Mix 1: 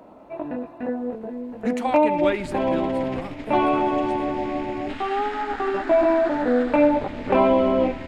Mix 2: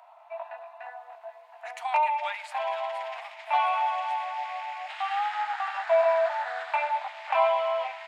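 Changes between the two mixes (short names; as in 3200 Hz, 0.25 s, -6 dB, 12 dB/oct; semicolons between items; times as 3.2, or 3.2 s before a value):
speech -3.5 dB; master: add rippled Chebyshev high-pass 660 Hz, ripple 3 dB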